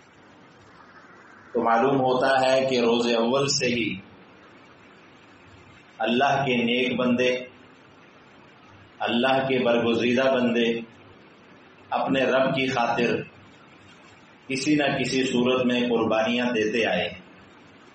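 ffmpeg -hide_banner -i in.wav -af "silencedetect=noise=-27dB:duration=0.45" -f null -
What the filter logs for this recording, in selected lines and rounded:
silence_start: 0.00
silence_end: 1.55 | silence_duration: 1.55
silence_start: 3.94
silence_end: 6.00 | silence_duration: 2.06
silence_start: 7.42
silence_end: 9.01 | silence_duration: 1.59
silence_start: 10.80
silence_end: 11.92 | silence_duration: 1.12
silence_start: 13.22
silence_end: 14.51 | silence_duration: 1.29
silence_start: 17.08
silence_end: 17.95 | silence_duration: 0.86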